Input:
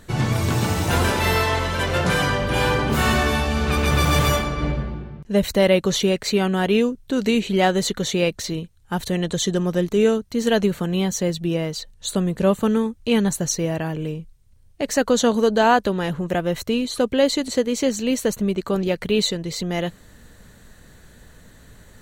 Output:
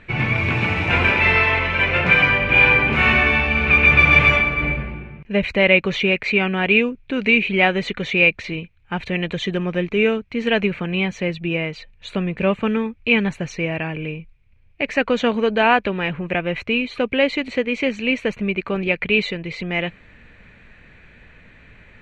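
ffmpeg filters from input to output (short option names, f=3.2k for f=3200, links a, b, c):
-af "lowpass=f=2.4k:t=q:w=9.4,volume=-1.5dB"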